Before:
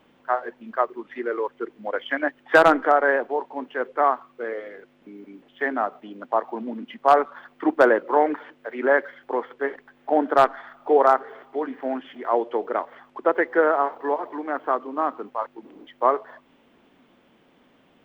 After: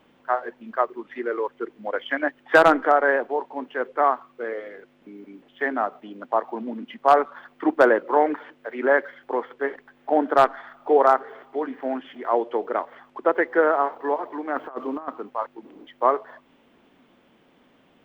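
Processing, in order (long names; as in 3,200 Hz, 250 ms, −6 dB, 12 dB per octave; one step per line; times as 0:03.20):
0:14.55–0:15.08: compressor whose output falls as the input rises −29 dBFS, ratio −0.5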